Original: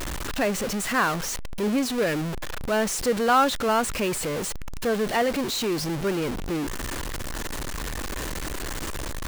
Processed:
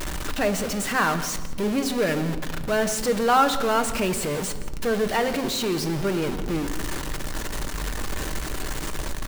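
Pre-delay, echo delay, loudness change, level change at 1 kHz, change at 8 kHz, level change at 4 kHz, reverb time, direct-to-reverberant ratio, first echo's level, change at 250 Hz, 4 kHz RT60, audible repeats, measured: 5 ms, 171 ms, +1.0 dB, +1.0 dB, +0.5 dB, +1.0 dB, 1.3 s, 6.5 dB, -18.5 dB, +1.0 dB, 0.75 s, 1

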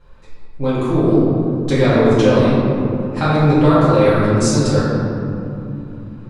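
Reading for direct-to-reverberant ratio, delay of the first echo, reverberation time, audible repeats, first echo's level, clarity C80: -11.5 dB, no echo, 2.9 s, no echo, no echo, -1.0 dB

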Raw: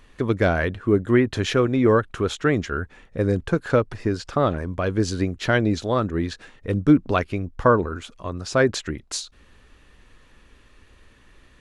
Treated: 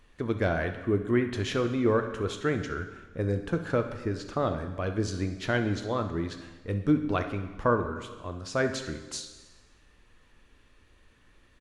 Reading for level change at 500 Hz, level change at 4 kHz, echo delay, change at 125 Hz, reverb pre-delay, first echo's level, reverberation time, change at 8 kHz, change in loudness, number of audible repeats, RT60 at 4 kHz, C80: -7.5 dB, -7.0 dB, 66 ms, -6.5 dB, 5 ms, -14.5 dB, 1.3 s, -7.0 dB, -7.5 dB, 1, 1.2 s, 11.0 dB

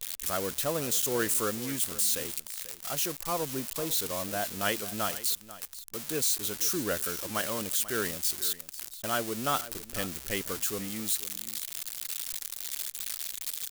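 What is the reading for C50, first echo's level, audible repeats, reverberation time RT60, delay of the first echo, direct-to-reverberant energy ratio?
no reverb, -16.0 dB, 1, no reverb, 490 ms, no reverb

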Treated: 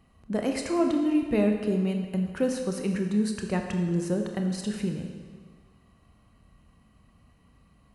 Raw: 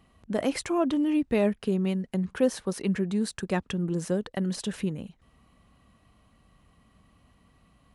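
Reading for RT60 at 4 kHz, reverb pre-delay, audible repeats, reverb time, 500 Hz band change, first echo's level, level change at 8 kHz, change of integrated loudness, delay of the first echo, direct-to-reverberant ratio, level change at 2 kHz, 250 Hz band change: 1.5 s, 24 ms, no echo, 1.6 s, -0.5 dB, no echo, -1.0 dB, +0.5 dB, no echo, 3.5 dB, -1.0 dB, +1.0 dB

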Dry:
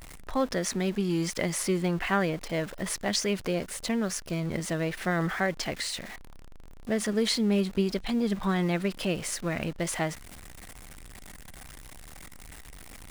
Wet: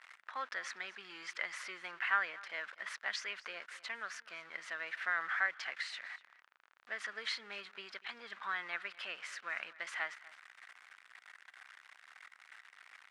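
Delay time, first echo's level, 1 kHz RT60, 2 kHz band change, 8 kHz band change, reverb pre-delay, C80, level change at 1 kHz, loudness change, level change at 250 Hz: 242 ms, -20.0 dB, no reverb, -1.5 dB, -19.5 dB, no reverb, no reverb, -7.0 dB, -10.5 dB, -36.0 dB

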